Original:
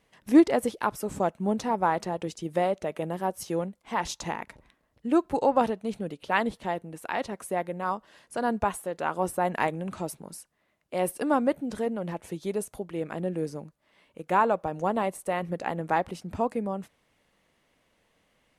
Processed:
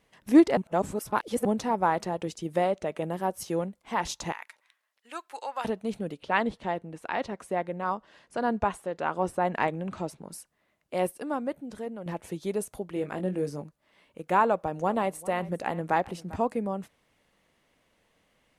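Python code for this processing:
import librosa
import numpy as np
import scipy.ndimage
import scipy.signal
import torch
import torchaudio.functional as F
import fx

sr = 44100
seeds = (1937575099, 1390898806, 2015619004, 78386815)

y = fx.peak_eq(x, sr, hz=12000.0, db=-9.5, octaves=0.28, at=(2.64, 3.04))
y = fx.highpass(y, sr, hz=1400.0, slope=12, at=(4.32, 5.65))
y = fx.air_absorb(y, sr, metres=65.0, at=(6.2, 10.31))
y = fx.doubler(y, sr, ms=21.0, db=-7, at=(12.94, 13.63))
y = fx.echo_single(y, sr, ms=396, db=-19.0, at=(14.48, 16.36))
y = fx.edit(y, sr, fx.reverse_span(start_s=0.57, length_s=0.88),
    fx.clip_gain(start_s=11.07, length_s=0.99, db=-7.0), tone=tone)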